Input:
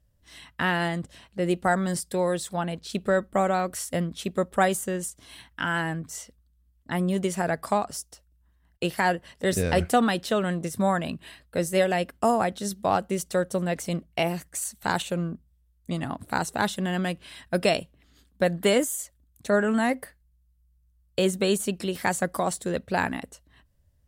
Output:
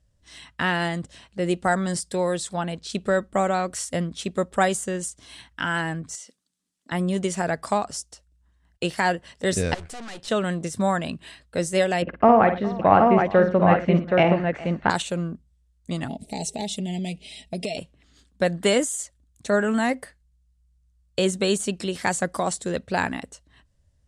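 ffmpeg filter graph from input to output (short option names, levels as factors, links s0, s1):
-filter_complex "[0:a]asettb=1/sr,asplit=3[s0][s1][s2];[s0]atrim=end=6.154[s3];[s1]atrim=start=6.15:end=6.92,asetpts=PTS-STARTPTS,afade=t=in:d=0.004:c=qsin,afade=t=out:st=0.766:d=0.004:c=qsin,highpass=f=200:w=0.5412,highpass=f=200:w=1.3066,highshelf=f=2900:g=8.5,acompressor=threshold=0.00708:ratio=3:attack=3.2:release=140:knee=1:detection=peak[s4];[s2]atrim=start=6.916[s5];[s3][s4]acrossfade=d=0.004:c1=hsin:c2=qsin[s6];[s6][s5]acrossfade=d=0.004:c1=qsin:c2=hsin,asettb=1/sr,asplit=3[s7][s8][s9];[s7]atrim=end=9.744[s10];[s8]atrim=start=9.74:end=10.28,asetpts=PTS-STARTPTS,afade=t=in:d=0.004:c=qsin,afade=t=out:st=0.536:d=0.004:c=qsin,highpass=f=75:w=0.5412,highpass=f=75:w=1.3066,equalizer=f=210:t=o:w=1.3:g=-7,aeval=exprs='(tanh(79.4*val(0)+0.7)-tanh(0.7))/79.4':c=same[s11];[s9]atrim=start=10.276[s12];[s10][s11]acrossfade=d=0.004:c1=hsin:c2=qsin[s13];[s13][s12]acrossfade=d=0.004:c1=qsin:c2=hsin,asettb=1/sr,asplit=3[s14][s15][s16];[s14]atrim=end=12.024[s17];[s15]atrim=start=12.02:end=14.9,asetpts=PTS-STARTPTS,afade=t=in:d=0.004:c=qsin,afade=t=out:st=2.876:d=0.004:c=qsin,lowpass=f=2400:w=0.5412,lowpass=f=2400:w=1.3066,acontrast=55,aecho=1:1:52|113|411|773:0.376|0.141|0.112|0.668,atrim=end_sample=127008[s18];[s16]atrim=start=14.896[s19];[s17][s18]acrossfade=d=0.004:c1=hsin:c2=qsin[s20];[s20][s19]acrossfade=d=0.004:c1=qsin:c2=hsin,asettb=1/sr,asplit=3[s21][s22][s23];[s21]atrim=end=16.084[s24];[s22]atrim=start=16.08:end=17.77,asetpts=PTS-STARTPTS,afade=t=in:d=0.004:c=qsin,afade=t=out:st=1.686:d=0.004:c=qsin,asuperstop=centerf=1300:order=8:qfactor=1,aecho=1:1:4.7:0.66,atrim=end_sample=74529,acompressor=threshold=0.0501:ratio=10:attack=3.2:release=140:knee=1:detection=peak[s25];[s23]atrim=start=17.766[s26];[s24][s25]acrossfade=d=0.004:c1=hsin:c2=qsin[s27];[s27][s26]acrossfade=d=0.004:c1=qsin:c2=hsin,lowpass=f=8700:w=0.5412,lowpass=f=8700:w=1.3066,highshelf=f=5100:g=6,volume=1.12"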